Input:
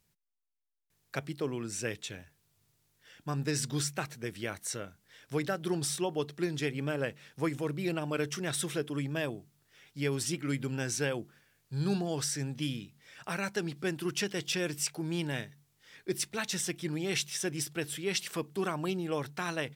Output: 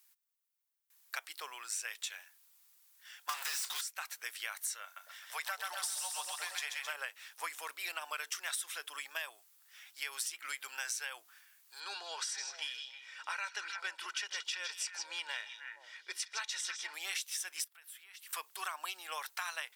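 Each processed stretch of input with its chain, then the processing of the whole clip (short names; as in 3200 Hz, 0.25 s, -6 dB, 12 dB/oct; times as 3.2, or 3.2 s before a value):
3.29–3.81 bell 220 Hz -6.5 dB 1.6 oct + overdrive pedal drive 37 dB, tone 8000 Hz, clips at -20 dBFS
4.83–6.93 resonant low shelf 470 Hz -9 dB, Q 1.5 + split-band echo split 630 Hz, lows 0.234 s, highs 0.131 s, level -3 dB
11.8–16.94 air absorption 88 m + comb 2.1 ms, depth 44% + delay with a stepping band-pass 0.157 s, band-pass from 4500 Hz, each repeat -1.4 oct, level -5 dB
17.64–18.33 HPF 1200 Hz 6 dB/oct + bell 5900 Hz -11 dB 2.1 oct + compressor 5:1, threshold -55 dBFS
whole clip: HPF 920 Hz 24 dB/oct; high shelf 9900 Hz +11 dB; compressor 10:1, threshold -38 dBFS; gain +3 dB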